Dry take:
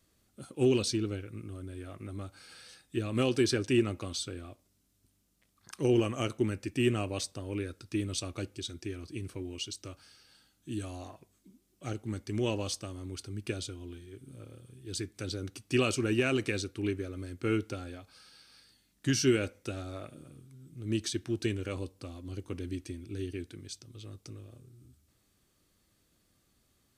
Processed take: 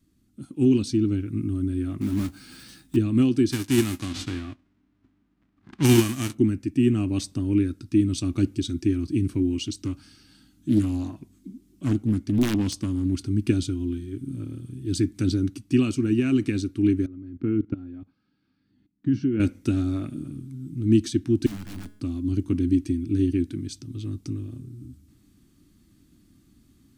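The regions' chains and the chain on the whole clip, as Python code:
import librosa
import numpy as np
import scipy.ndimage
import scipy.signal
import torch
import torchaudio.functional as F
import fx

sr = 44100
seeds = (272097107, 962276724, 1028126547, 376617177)

y = fx.chain(x, sr, fx.block_float(bits=3),
    fx.doubler(ms=15.0, db=-9), at=(2.01, 2.97))
y = fx.envelope_flatten(y, sr, power=0.3, at=(3.51, 6.33), fade=0.02)
y = fx.env_lowpass(y, sr, base_hz=1600.0, full_db=-26.5, at=(3.51, 6.33), fade=0.02)
y = fx.chain(y, sr, fx.overflow_wrap(gain_db=21.0),
    fx.doppler_dist(depth_ms=0.83), at=(9.57, 13.27))
y = fx.chain(y, sr, fx.highpass(hz=92.0, slope=12),
    fx.level_steps(step_db=18),
    fx.spacing_loss(db_at_10k=39), at=(17.06, 19.4))
y = fx.chain(y, sr, fx.overflow_wrap(gain_db=32.5),
    fx.comb_fb(f0_hz=210.0, decay_s=0.68, harmonics='all', damping=0.0, mix_pct=60), at=(21.46, 22.0))
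y = fx.low_shelf_res(y, sr, hz=380.0, db=9.5, q=3.0)
y = fx.rider(y, sr, range_db=4, speed_s=0.5)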